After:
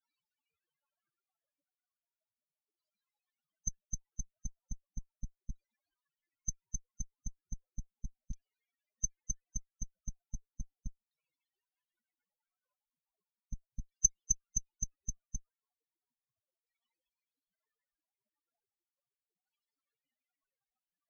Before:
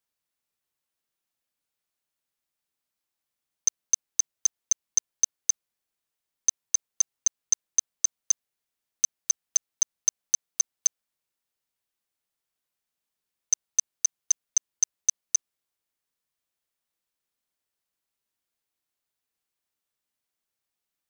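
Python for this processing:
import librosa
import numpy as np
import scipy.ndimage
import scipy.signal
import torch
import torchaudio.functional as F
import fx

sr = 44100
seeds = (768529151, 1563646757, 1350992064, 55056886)

y = fx.spec_topn(x, sr, count=8)
y = fx.cheby_harmonics(y, sr, harmonics=(2, 3, 6, 7), levels_db=(-32, -15, -29, -10), full_scale_db=-11.0)
y = fx.filter_lfo_lowpass(y, sr, shape='saw_down', hz=0.36, low_hz=440.0, high_hz=3900.0, q=1.2)
y = F.gain(torch.from_numpy(y), 8.0).numpy()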